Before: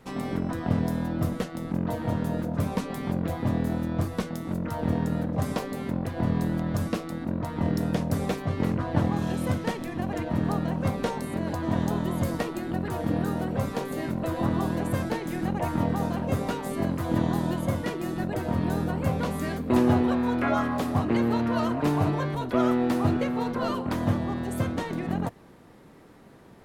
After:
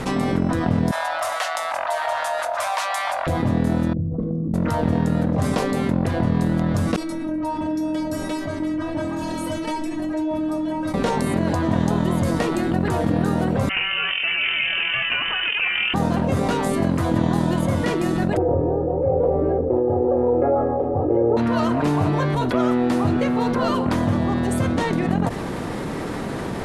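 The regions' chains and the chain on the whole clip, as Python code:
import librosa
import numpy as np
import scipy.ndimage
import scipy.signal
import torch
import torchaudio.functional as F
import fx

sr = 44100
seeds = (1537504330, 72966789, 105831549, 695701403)

y = fx.chain(x, sr, fx.ellip_highpass(hz=650.0, order=4, stop_db=40),
    fx.resample_bad(factor=2, down='none', up='hold'), at=(0.91, 3.27))
y = fx.chain(y, sr, fx.envelope_sharpen(power=3.0),
    fx.lowpass(hz=9400.0, slope=12),
    fx.comb_fb(f0_hz=54.0, decay_s=1.1, harmonics='all', damping=0.0, mix_pct=80), at=(3.93, 4.54))
y = fx.chain(y, sr, fx.stiff_resonator(f0_hz=310.0, decay_s=0.28, stiffness=0.002),
    fx.echo_single(ms=249, db=-23.0), at=(6.96, 10.94))
y = fx.chain(y, sr, fx.highpass(hz=580.0, slope=12),
    fx.freq_invert(carrier_hz=3300), at=(13.69, 15.94))
y = fx.chain(y, sr, fx.lowpass_res(hz=580.0, q=6.8),
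    fx.comb(ms=2.4, depth=0.97),
    fx.tremolo(hz=1.0, depth=0.72), at=(18.37, 21.37))
y = scipy.signal.sosfilt(scipy.signal.butter(4, 11000.0, 'lowpass', fs=sr, output='sos'), y)
y = fx.env_flatten(y, sr, amount_pct=70)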